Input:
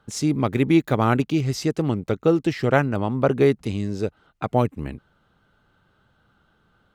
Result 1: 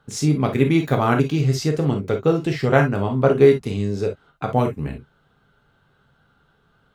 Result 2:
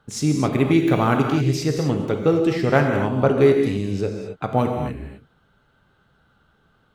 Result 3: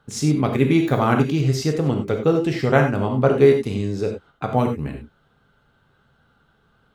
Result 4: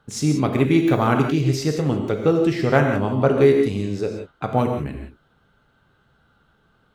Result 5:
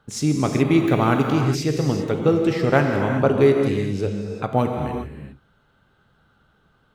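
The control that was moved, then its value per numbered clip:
non-linear reverb, gate: 80, 290, 120, 200, 430 ms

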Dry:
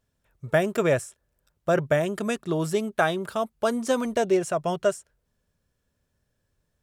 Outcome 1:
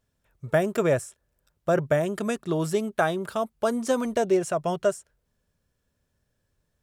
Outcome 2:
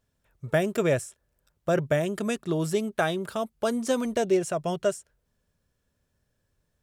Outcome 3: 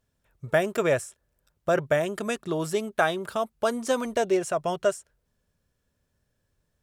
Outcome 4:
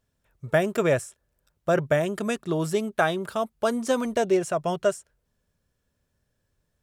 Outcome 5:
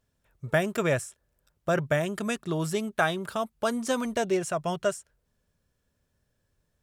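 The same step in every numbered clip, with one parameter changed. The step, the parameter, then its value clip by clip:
dynamic EQ, frequency: 2900, 1100, 170, 8800, 450 Hz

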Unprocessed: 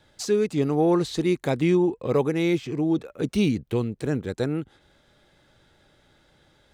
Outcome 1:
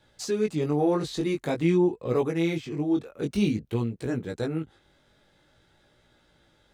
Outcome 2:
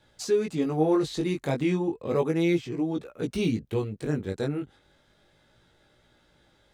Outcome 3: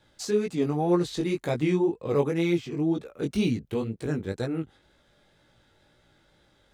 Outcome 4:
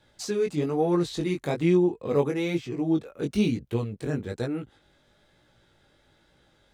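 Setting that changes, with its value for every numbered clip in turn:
chorus, rate: 0.49, 0.33, 2, 1.1 Hz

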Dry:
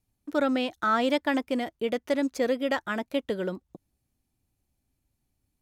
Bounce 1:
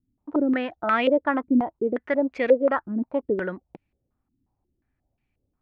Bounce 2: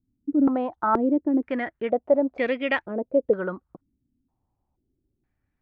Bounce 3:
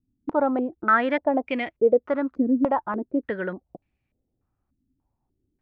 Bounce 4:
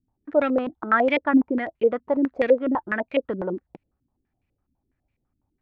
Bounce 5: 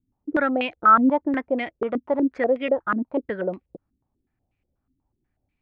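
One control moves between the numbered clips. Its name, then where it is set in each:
stepped low-pass, rate: 5.6, 2.1, 3.4, 12, 8.2 Hz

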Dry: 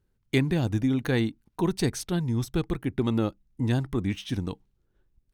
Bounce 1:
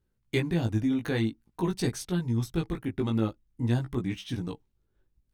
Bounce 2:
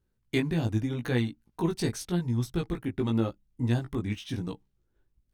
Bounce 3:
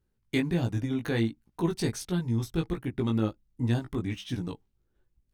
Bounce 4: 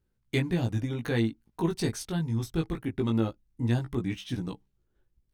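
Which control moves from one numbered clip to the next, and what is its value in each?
chorus, rate: 0.5, 0.85, 1.4, 0.22 Hz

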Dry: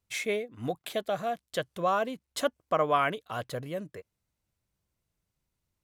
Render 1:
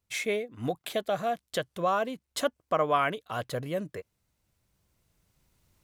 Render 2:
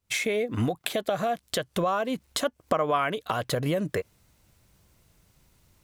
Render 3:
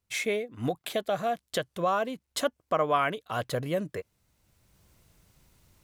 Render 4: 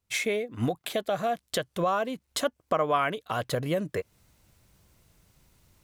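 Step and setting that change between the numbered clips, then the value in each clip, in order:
recorder AGC, rising by: 5.3, 91, 13, 37 dB/s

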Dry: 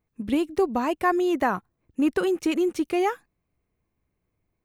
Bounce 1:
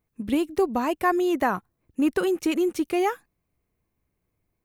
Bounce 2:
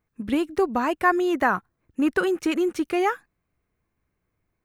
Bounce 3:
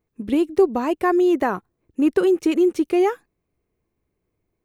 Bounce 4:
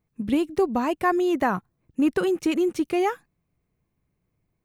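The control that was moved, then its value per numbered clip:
bell, frequency: 15000, 1500, 390, 150 Hz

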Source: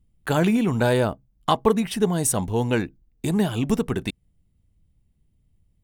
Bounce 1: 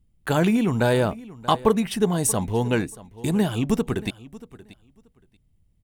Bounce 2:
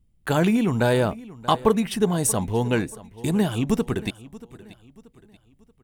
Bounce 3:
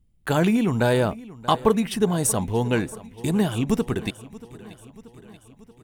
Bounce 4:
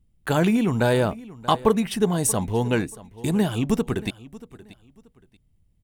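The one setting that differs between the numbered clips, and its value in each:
feedback echo, feedback: 17, 40, 62, 26%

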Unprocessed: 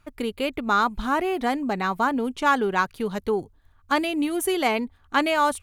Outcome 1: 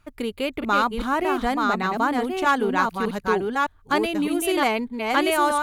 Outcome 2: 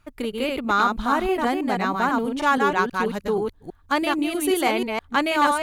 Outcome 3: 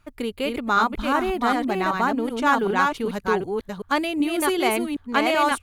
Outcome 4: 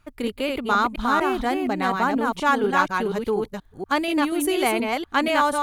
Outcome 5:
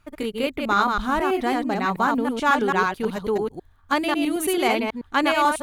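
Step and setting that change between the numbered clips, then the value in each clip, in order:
reverse delay, time: 0.611, 0.161, 0.382, 0.24, 0.109 s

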